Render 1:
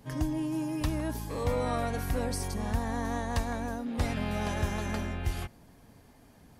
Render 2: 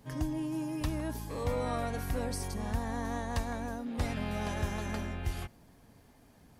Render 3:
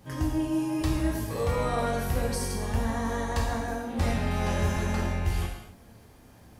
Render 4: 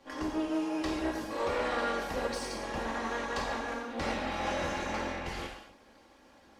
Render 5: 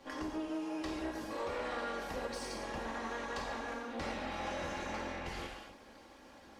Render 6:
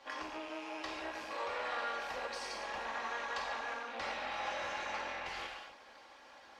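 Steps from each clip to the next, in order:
surface crackle 490 per second −61 dBFS; level −3 dB
in parallel at −9 dB: hard clipping −29 dBFS, distortion −14 dB; on the sum: reverb whose tail is shaped and stops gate 300 ms falling, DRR −2.5 dB
lower of the sound and its delayed copy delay 3.6 ms; three-way crossover with the lows and the highs turned down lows −14 dB, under 290 Hz, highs −18 dB, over 6,700 Hz
downward compressor 2 to 1, threshold −46 dBFS, peak gain reduction 10.5 dB; level +2.5 dB
loose part that buzzes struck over −52 dBFS, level −42 dBFS; three-way crossover with the lows and the highs turned down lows −17 dB, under 570 Hz, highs −12 dB, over 6,200 Hz; level +3 dB

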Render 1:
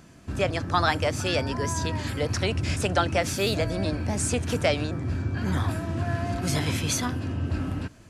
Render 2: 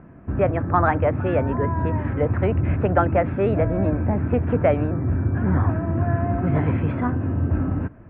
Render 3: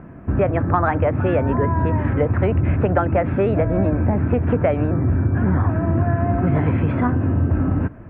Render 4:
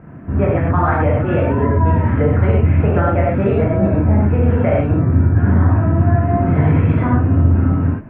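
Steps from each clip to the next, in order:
Bessel low-pass filter 1,200 Hz, order 8; level +6.5 dB
downward compressor, threshold −20 dBFS, peak gain reduction 7.5 dB; level +6 dB
reverb whose tail is shaped and stops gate 150 ms flat, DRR −6 dB; level −4 dB

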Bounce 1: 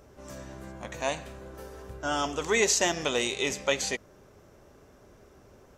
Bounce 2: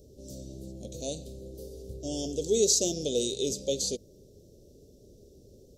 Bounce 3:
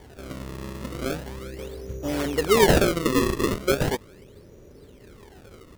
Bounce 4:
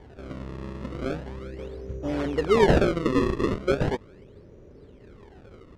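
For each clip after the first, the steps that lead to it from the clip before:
elliptic band-stop filter 500–4,000 Hz, stop band 70 dB; level +2 dB
sample-and-hold swept by an LFO 33×, swing 160% 0.38 Hz; level +7 dB
head-to-tape spacing loss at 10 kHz 21 dB

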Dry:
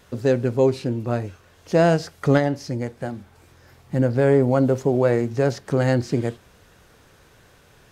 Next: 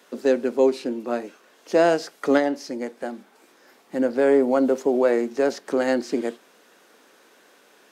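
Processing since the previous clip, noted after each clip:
Butterworth high-pass 230 Hz 36 dB per octave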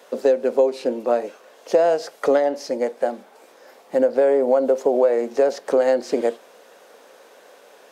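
drawn EQ curve 340 Hz 0 dB, 520 Hz +13 dB, 1,400 Hz +3 dB
downward compressor 6 to 1, threshold −14 dBFS, peak gain reduction 11 dB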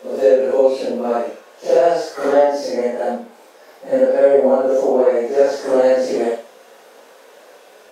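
random phases in long frames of 200 ms
on a send: flutter between parallel walls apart 11 metres, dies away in 0.36 s
on the sum: level +3.5 dB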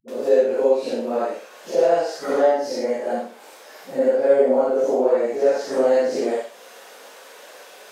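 all-pass dispersion highs, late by 82 ms, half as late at 320 Hz
one half of a high-frequency compander encoder only
level −4 dB

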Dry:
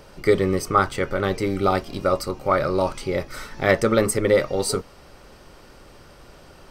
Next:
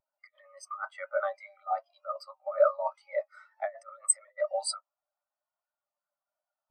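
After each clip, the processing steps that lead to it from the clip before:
compressor whose output falls as the input rises −22 dBFS, ratio −0.5
Butterworth high-pass 580 Hz 96 dB per octave
every bin expanded away from the loudest bin 2.5 to 1
level −1 dB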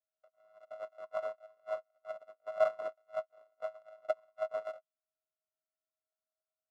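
samples sorted by size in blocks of 64 samples
ring modulation 54 Hz
pair of resonant band-passes 820 Hz, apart 0.78 octaves
level +1.5 dB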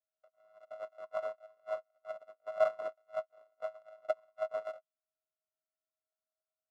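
no processing that can be heard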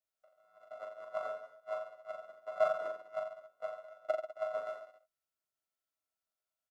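reverse bouncing-ball delay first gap 40 ms, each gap 1.15×, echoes 5
level −1 dB

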